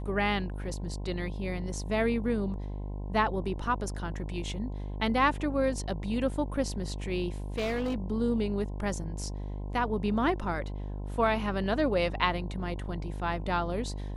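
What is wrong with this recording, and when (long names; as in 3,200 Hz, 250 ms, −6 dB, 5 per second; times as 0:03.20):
mains buzz 50 Hz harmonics 21 −36 dBFS
0:07.58–0:07.96: clipping −26.5 dBFS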